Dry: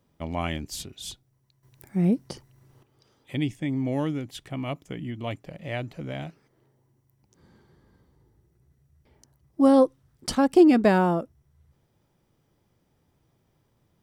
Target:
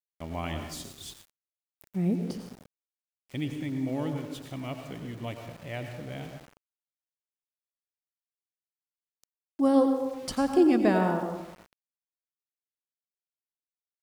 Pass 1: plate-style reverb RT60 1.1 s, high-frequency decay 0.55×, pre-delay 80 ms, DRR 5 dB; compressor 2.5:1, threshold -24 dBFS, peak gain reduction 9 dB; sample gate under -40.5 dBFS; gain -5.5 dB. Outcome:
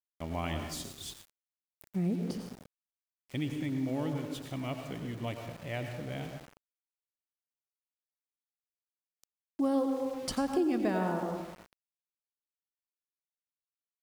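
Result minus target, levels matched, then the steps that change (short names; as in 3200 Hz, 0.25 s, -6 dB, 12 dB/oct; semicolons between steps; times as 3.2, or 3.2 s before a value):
compressor: peak gain reduction +9 dB
remove: compressor 2.5:1, threshold -24 dBFS, peak gain reduction 9 dB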